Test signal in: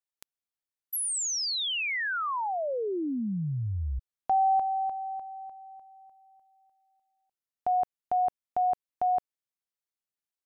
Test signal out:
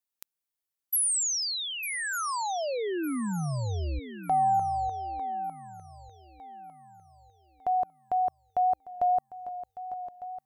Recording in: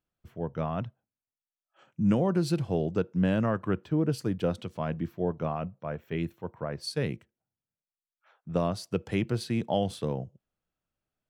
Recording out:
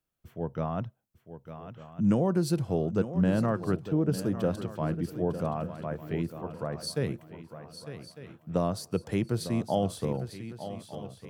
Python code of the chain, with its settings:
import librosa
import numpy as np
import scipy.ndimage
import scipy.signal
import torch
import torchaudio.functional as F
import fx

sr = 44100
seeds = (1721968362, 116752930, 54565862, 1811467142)

y = fx.high_shelf(x, sr, hz=8800.0, db=8.5)
y = fx.echo_swing(y, sr, ms=1202, ratio=3, feedback_pct=33, wet_db=-12)
y = fx.dynamic_eq(y, sr, hz=2700.0, q=1.1, threshold_db=-50.0, ratio=4.0, max_db=-6)
y = fx.wow_flutter(y, sr, seeds[0], rate_hz=2.1, depth_cents=24.0)